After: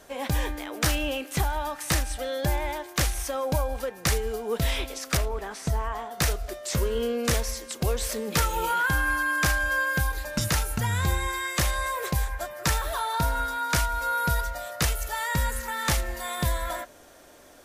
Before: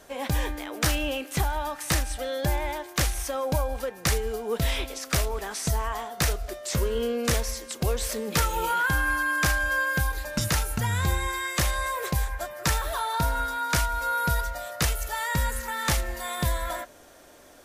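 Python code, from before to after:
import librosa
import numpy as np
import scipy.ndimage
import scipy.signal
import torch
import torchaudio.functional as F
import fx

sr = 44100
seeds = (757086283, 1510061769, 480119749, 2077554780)

y = fx.high_shelf(x, sr, hz=3000.0, db=-10.0, at=(5.17, 6.11))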